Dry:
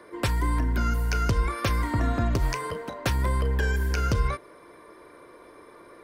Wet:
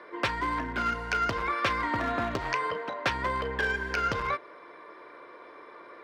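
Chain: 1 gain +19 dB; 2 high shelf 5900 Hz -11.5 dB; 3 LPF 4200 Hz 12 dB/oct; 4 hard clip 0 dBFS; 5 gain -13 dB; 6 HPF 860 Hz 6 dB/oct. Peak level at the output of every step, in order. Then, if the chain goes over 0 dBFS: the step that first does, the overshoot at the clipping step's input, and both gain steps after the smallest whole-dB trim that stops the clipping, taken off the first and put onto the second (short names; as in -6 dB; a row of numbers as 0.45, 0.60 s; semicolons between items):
+5.0, +5.0, +5.0, 0.0, -13.0, -12.5 dBFS; step 1, 5.0 dB; step 1 +14 dB, step 5 -8 dB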